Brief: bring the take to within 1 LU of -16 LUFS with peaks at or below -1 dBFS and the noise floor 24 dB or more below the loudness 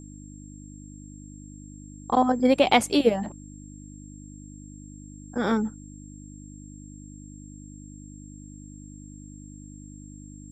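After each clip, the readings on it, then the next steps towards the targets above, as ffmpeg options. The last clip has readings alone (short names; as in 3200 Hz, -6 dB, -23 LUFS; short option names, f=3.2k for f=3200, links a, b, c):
hum 50 Hz; harmonics up to 300 Hz; hum level -41 dBFS; steady tone 7500 Hz; tone level -51 dBFS; loudness -23.5 LUFS; peak -6.0 dBFS; loudness target -16.0 LUFS
-> -af "bandreject=f=50:t=h:w=4,bandreject=f=100:t=h:w=4,bandreject=f=150:t=h:w=4,bandreject=f=200:t=h:w=4,bandreject=f=250:t=h:w=4,bandreject=f=300:t=h:w=4"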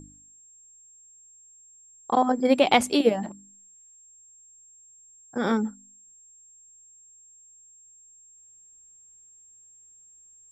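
hum none; steady tone 7500 Hz; tone level -51 dBFS
-> -af "bandreject=f=7.5k:w=30"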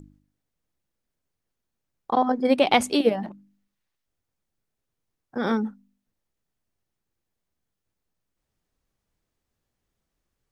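steady tone none; loudness -23.5 LUFS; peak -5.5 dBFS; loudness target -16.0 LUFS
-> -af "volume=7.5dB,alimiter=limit=-1dB:level=0:latency=1"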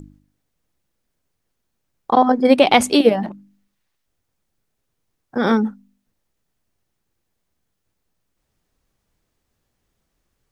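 loudness -16.5 LUFS; peak -1.0 dBFS; noise floor -75 dBFS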